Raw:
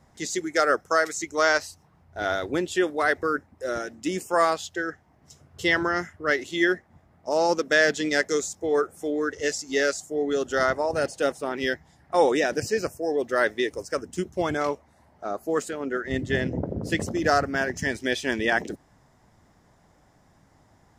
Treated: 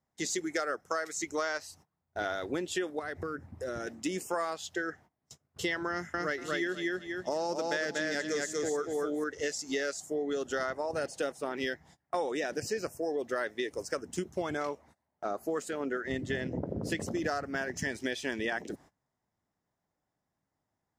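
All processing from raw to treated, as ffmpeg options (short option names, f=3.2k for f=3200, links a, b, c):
-filter_complex "[0:a]asettb=1/sr,asplit=3[a][b][c];[a]atrim=end=2.994[d];[b]atrim=start=2.99:end=3.87,asetpts=PTS-STARTPTS,afade=t=in:d=0.004:c=qsin,afade=t=out:st=0.876:d=0.004:c=qsin,equalizer=f=100:w=0.67:g=14.5,acompressor=threshold=-33dB:ratio=5:attack=3.2:release=140:knee=1:detection=peak[e];[c]atrim=start=3.866[f];[d][e]acrossfade=d=0.004:c1=hsin:c2=qsin[g];[g][f]acrossfade=d=0.004:c1=qsin:c2=hsin,asettb=1/sr,asplit=3[h][i][j];[h]atrim=end=5.904[k];[i]atrim=start=5.9:end=9.24,asetpts=PTS-STARTPTS,afade=t=in:d=0.004:c=qsin,afade=t=out:st=3.336:d=0.004:c=qsin,highpass=52,bass=f=250:g=5,treble=f=4k:g=2,aecho=1:1:239|478|717:0.708|0.17|0.0408,atrim=end_sample=147294[l];[j]atrim=start=9.236[m];[k][l]acrossfade=d=0.004:c1=hsin:c2=qsin[n];[n][m]acrossfade=d=0.004:c1=qsin:c2=hsin,agate=range=-24dB:threshold=-49dB:ratio=16:detection=peak,lowshelf=f=67:g=-10,acompressor=threshold=-30dB:ratio=6"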